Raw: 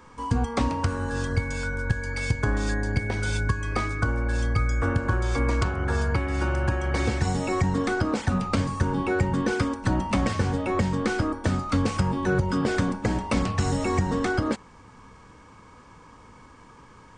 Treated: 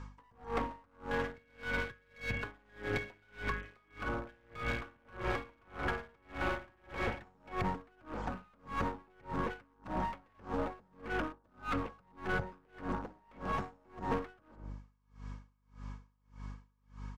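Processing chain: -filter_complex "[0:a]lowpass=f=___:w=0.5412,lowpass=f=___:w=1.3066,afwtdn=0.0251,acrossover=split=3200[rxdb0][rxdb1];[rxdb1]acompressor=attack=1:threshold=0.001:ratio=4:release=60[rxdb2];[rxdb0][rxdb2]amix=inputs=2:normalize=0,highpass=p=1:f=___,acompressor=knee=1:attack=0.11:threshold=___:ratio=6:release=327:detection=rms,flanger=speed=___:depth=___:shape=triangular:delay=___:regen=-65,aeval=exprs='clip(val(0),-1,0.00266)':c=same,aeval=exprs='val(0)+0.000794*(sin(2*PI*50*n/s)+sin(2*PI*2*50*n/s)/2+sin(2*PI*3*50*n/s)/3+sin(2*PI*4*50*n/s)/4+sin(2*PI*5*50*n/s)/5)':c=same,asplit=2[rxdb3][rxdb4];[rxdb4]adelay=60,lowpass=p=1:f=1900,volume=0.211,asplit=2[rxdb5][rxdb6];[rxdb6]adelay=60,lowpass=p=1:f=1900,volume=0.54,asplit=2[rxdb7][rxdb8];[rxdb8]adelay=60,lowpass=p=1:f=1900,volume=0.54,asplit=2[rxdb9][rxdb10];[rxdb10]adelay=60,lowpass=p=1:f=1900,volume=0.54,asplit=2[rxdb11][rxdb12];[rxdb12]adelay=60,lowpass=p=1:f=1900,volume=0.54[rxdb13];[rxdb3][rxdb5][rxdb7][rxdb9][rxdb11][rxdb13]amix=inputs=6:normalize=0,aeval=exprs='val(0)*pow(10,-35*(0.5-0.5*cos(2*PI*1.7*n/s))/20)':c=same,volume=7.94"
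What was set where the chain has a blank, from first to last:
7200, 7200, 620, 0.0126, 0.41, 4.4, 0.7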